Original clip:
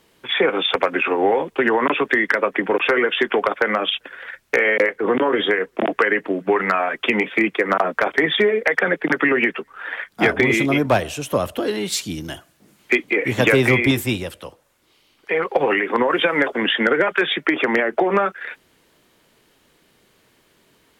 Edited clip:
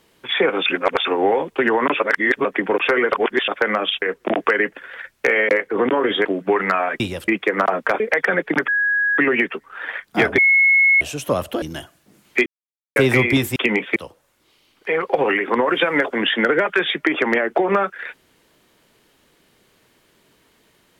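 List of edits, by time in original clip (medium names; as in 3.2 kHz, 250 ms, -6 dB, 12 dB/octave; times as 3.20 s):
0.66–1.05 s: reverse
2.00–2.45 s: reverse
3.12–3.48 s: reverse
5.54–6.25 s: move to 4.02 s
7.00–7.40 s: swap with 14.10–14.38 s
8.12–8.54 s: delete
9.22 s: add tone 1.66 kHz -15.5 dBFS 0.50 s
10.42–11.05 s: bleep 2.18 kHz -10.5 dBFS
11.66–12.16 s: delete
13.00–13.50 s: mute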